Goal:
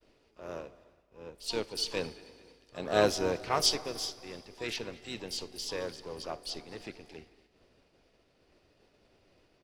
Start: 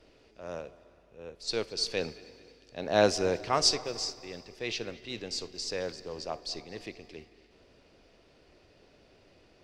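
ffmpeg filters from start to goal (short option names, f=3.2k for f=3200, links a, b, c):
-filter_complex "[0:a]asplit=4[a][b][c][d];[b]asetrate=29433,aresample=44100,atempo=1.49831,volume=-12dB[e];[c]asetrate=35002,aresample=44100,atempo=1.25992,volume=-16dB[f];[d]asetrate=88200,aresample=44100,atempo=0.5,volume=-14dB[g];[a][e][f][g]amix=inputs=4:normalize=0,agate=range=-33dB:threshold=-55dB:ratio=3:detection=peak,volume=-2.5dB"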